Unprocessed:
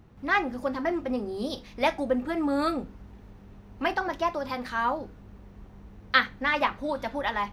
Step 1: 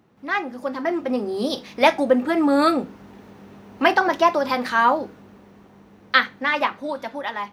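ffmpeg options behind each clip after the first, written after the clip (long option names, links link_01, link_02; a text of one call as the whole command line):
ffmpeg -i in.wav -af "highpass=200,dynaudnorm=framelen=280:gausssize=7:maxgain=11.5dB" out.wav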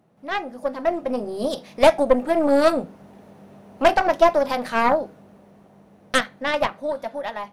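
ffmpeg -i in.wav -af "aeval=exprs='0.891*(cos(1*acos(clip(val(0)/0.891,-1,1)))-cos(1*PI/2))+0.2*(cos(4*acos(clip(val(0)/0.891,-1,1)))-cos(4*PI/2))+0.0316*(cos(8*acos(clip(val(0)/0.891,-1,1)))-cos(8*PI/2))':channel_layout=same,equalizer=frequency=160:width_type=o:width=0.67:gain=8,equalizer=frequency=630:width_type=o:width=0.67:gain=11,equalizer=frequency=10000:width_type=o:width=0.67:gain=9,volume=-6.5dB" out.wav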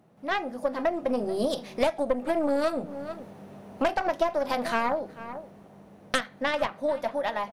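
ffmpeg -i in.wav -filter_complex "[0:a]asplit=2[link_01][link_02];[link_02]adelay=437.3,volume=-21dB,highshelf=frequency=4000:gain=-9.84[link_03];[link_01][link_03]amix=inputs=2:normalize=0,acompressor=threshold=-23dB:ratio=6,volume=1dB" out.wav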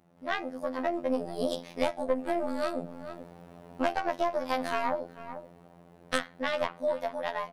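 ffmpeg -i in.wav -af "afftfilt=real='hypot(re,im)*cos(PI*b)':imag='0':win_size=2048:overlap=0.75" out.wav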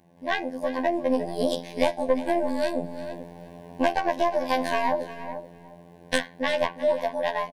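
ffmpeg -i in.wav -af "asuperstop=centerf=1300:order=12:qfactor=3.6,aecho=1:1:355:0.178,volume=5.5dB" out.wav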